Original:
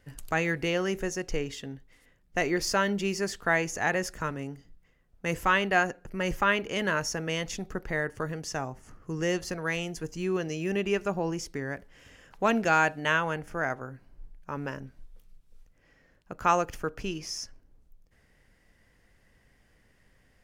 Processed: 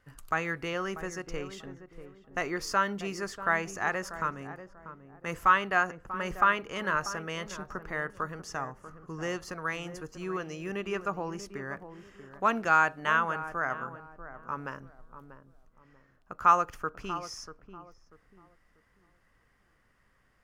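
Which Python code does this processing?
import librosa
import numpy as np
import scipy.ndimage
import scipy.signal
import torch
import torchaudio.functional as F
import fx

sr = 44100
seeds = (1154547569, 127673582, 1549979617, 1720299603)

p1 = fx.peak_eq(x, sr, hz=1200.0, db=13.0, octaves=0.73)
p2 = p1 + fx.echo_filtered(p1, sr, ms=640, feedback_pct=35, hz=800.0, wet_db=-10, dry=0)
y = F.gain(torch.from_numpy(p2), -7.0).numpy()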